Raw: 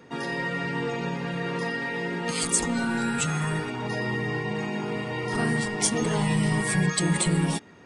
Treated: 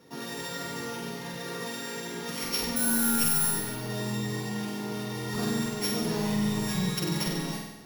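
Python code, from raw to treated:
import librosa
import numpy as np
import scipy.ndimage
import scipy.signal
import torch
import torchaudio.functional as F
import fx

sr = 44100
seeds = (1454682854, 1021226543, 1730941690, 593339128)

y = np.r_[np.sort(x[:len(x) // 8 * 8].reshape(-1, 8), axis=1).ravel(), x[len(x) // 8 * 8:]]
y = fx.resample_bad(y, sr, factor=4, down='none', up='zero_stuff', at=(2.76, 3.51))
y = fx.room_flutter(y, sr, wall_m=8.2, rt60_s=0.98)
y = F.gain(torch.from_numpy(y), -7.0).numpy()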